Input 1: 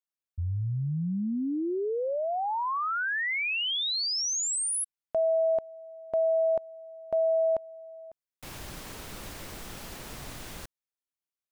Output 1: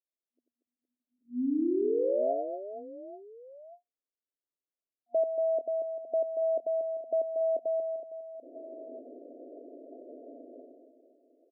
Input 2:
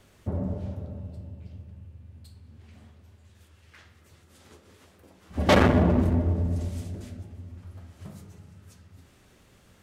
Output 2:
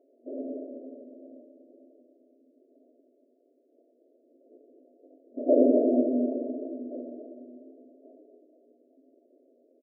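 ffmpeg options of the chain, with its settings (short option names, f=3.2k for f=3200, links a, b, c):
-af "aecho=1:1:90|234|464.4|833|1423:0.631|0.398|0.251|0.158|0.1,afftfilt=real='re*between(b*sr/4096,240,710)':imag='im*between(b*sr/4096,240,710)':win_size=4096:overlap=0.75"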